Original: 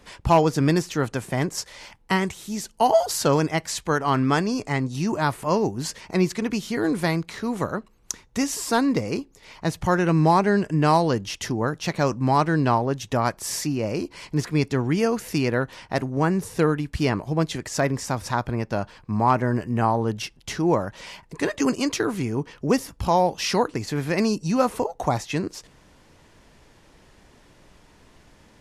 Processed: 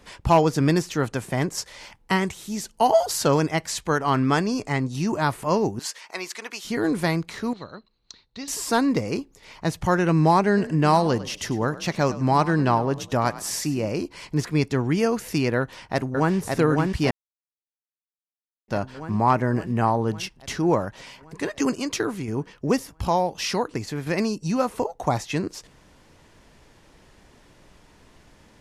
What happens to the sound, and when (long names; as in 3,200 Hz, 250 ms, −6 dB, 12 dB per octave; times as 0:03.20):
0:05.79–0:06.65: high-pass filter 820 Hz
0:07.53–0:08.48: transistor ladder low-pass 4,300 Hz, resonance 85%
0:10.47–0:13.89: echo with shifted repeats 101 ms, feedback 30%, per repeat +38 Hz, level −16 dB
0:15.58–0:16.36: delay throw 560 ms, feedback 70%, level −3 dB
0:17.11–0:18.68: silence
0:20.85–0:25.07: shaped tremolo saw down 2.8 Hz, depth 50%